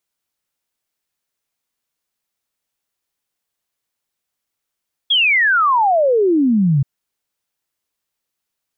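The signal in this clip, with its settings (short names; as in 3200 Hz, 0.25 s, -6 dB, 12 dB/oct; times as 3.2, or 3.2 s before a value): log sweep 3400 Hz -> 130 Hz 1.73 s -11 dBFS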